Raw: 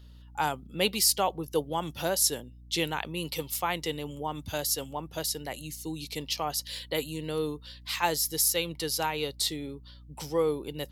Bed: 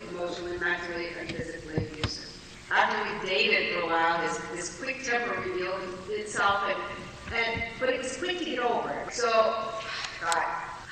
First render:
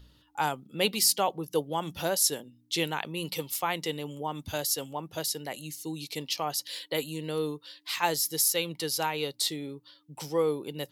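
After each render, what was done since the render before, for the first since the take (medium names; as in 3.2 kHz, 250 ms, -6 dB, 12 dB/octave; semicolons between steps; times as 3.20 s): de-hum 60 Hz, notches 4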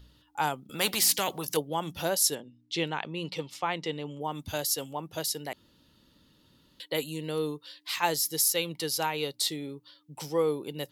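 0.69–1.57 s: spectrum-flattening compressor 2:1; 2.35–4.21 s: distance through air 110 m; 5.53–6.80 s: room tone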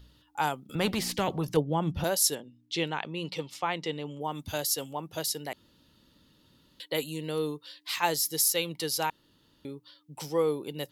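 0.75–2.04 s: RIAA curve playback; 9.10–9.65 s: room tone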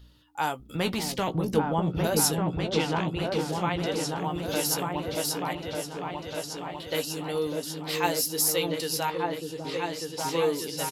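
doubling 17 ms -9 dB; delay with an opening low-pass 597 ms, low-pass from 400 Hz, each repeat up 2 oct, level 0 dB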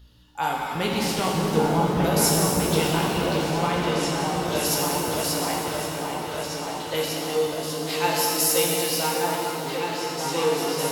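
pitch-shifted reverb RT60 2.6 s, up +7 st, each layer -8 dB, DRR -2 dB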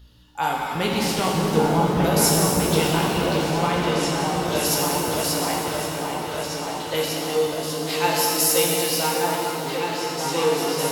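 trim +2 dB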